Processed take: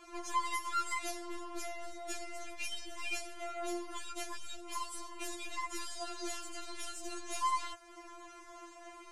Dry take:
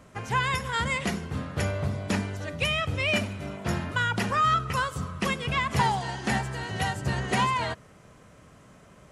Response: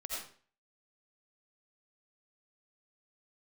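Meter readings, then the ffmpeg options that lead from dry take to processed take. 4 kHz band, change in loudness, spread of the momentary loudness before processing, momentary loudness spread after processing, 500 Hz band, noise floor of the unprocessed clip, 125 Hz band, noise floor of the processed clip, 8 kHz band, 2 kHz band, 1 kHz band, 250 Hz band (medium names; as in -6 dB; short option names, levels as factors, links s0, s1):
-11.5 dB, -12.0 dB, 7 LU, 16 LU, -12.0 dB, -54 dBFS, under -35 dB, -54 dBFS, -2.5 dB, -15.0 dB, -10.5 dB, -15.0 dB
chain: -filter_complex "[0:a]acrossover=split=5800[s0][s1];[s0]acompressor=threshold=0.0112:ratio=6[s2];[s2][s1]amix=inputs=2:normalize=0,aeval=exprs='(tanh(89.1*val(0)+0.25)-tanh(0.25))/89.1':c=same,lowpass=10000,afftfilt=real='re*4*eq(mod(b,16),0)':imag='im*4*eq(mod(b,16),0)':win_size=2048:overlap=0.75,volume=2.24"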